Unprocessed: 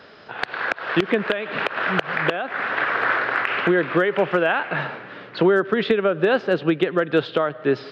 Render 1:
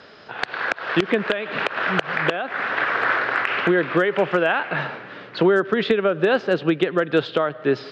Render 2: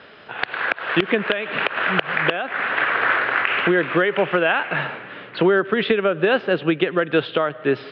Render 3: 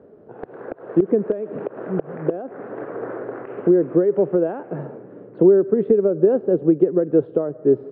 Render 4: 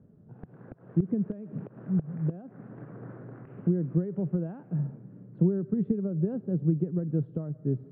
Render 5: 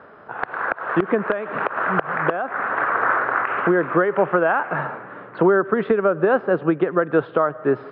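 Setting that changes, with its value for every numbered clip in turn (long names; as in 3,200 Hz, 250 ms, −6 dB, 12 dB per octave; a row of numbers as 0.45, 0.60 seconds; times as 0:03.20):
low-pass with resonance, frequency: 7,700, 3,000, 420, 160, 1,200 Hertz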